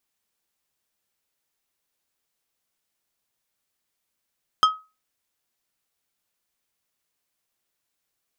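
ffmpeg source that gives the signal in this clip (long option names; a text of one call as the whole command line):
ffmpeg -f lavfi -i "aevalsrc='0.316*pow(10,-3*t/0.28)*sin(2*PI*1270*t)+0.141*pow(10,-3*t/0.147)*sin(2*PI*3175*t)+0.0631*pow(10,-3*t/0.106)*sin(2*PI*5080*t)+0.0282*pow(10,-3*t/0.091)*sin(2*PI*6350*t)+0.0126*pow(10,-3*t/0.076)*sin(2*PI*8255*t)':duration=0.89:sample_rate=44100" out.wav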